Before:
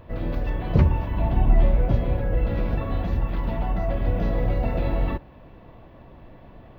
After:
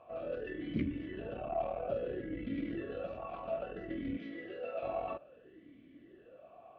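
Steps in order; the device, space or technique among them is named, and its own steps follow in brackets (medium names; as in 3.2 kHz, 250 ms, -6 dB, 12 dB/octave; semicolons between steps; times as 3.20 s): 4.17–4.83 s: high-pass 720 Hz 6 dB/octave; talk box (valve stage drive 13 dB, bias 0.5; talking filter a-i 0.6 Hz); trim +5 dB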